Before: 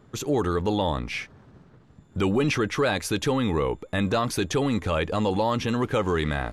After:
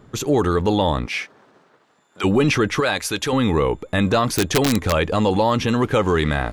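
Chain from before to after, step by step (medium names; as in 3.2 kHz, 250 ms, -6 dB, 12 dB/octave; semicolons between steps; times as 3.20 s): 1.05–2.23 s: high-pass 290 Hz -> 830 Hz 12 dB/octave; 2.80–3.33 s: bass shelf 470 Hz -9.5 dB; 4.30–4.93 s: integer overflow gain 15.5 dB; trim +6 dB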